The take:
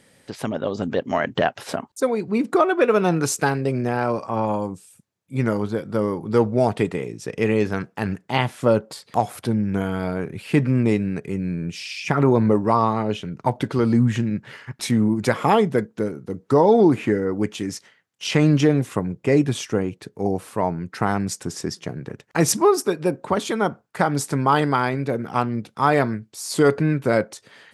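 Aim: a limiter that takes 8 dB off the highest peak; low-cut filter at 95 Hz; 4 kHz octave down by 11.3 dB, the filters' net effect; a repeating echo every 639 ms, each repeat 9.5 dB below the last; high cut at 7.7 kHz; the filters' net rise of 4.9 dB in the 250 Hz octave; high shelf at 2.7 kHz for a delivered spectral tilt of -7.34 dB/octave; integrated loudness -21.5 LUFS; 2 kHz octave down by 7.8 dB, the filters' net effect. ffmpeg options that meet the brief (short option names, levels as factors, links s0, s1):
-af "highpass=95,lowpass=7700,equalizer=f=250:t=o:g=6.5,equalizer=f=2000:t=o:g=-7,highshelf=f=2700:g=-6.5,equalizer=f=4000:t=o:g=-7,alimiter=limit=0.282:level=0:latency=1,aecho=1:1:639|1278|1917|2556:0.335|0.111|0.0365|0.012,volume=1.06"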